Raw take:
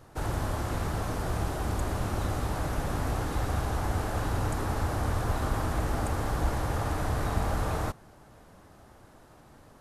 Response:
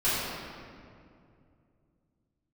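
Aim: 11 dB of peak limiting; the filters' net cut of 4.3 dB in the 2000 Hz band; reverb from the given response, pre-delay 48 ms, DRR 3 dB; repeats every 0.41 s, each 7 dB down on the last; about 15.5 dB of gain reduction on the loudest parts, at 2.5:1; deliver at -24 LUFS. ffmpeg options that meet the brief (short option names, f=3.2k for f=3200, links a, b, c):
-filter_complex "[0:a]equalizer=f=2k:t=o:g=-6,acompressor=threshold=-47dB:ratio=2.5,alimiter=level_in=16.5dB:limit=-24dB:level=0:latency=1,volume=-16.5dB,aecho=1:1:410|820|1230|1640|2050:0.447|0.201|0.0905|0.0407|0.0183,asplit=2[a][b];[1:a]atrim=start_sample=2205,adelay=48[c];[b][c]afir=irnorm=-1:irlink=0,volume=-16dB[d];[a][d]amix=inputs=2:normalize=0,volume=23dB"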